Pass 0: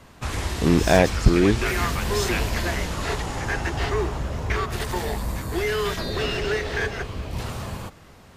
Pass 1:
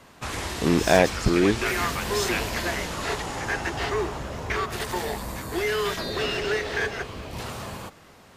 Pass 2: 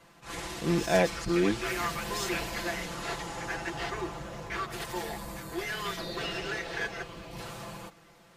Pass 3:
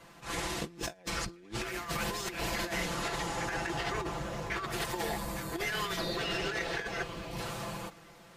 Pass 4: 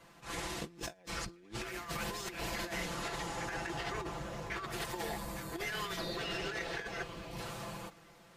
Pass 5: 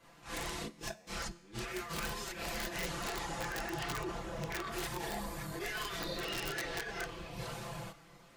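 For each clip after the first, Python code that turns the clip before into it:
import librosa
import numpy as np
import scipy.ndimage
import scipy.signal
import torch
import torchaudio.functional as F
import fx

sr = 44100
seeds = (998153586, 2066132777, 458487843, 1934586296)

y1 = fx.low_shelf(x, sr, hz=130.0, db=-11.5)
y2 = y1 + 0.83 * np.pad(y1, (int(5.9 * sr / 1000.0), 0))[:len(y1)]
y2 = fx.attack_slew(y2, sr, db_per_s=170.0)
y2 = F.gain(torch.from_numpy(y2), -8.5).numpy()
y3 = fx.over_compress(y2, sr, threshold_db=-35.0, ratio=-0.5)
y4 = fx.attack_slew(y3, sr, db_per_s=350.0)
y4 = F.gain(torch.from_numpy(y4), -4.5).numpy()
y5 = fx.chorus_voices(y4, sr, voices=6, hz=0.47, base_ms=29, depth_ms=4.4, mix_pct=60)
y5 = fx.comb_fb(y5, sr, f0_hz=71.0, decay_s=0.99, harmonics='all', damping=0.0, mix_pct=40)
y5 = (np.mod(10.0 ** (35.5 / 20.0) * y5 + 1.0, 2.0) - 1.0) / 10.0 ** (35.5 / 20.0)
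y5 = F.gain(torch.from_numpy(y5), 6.5).numpy()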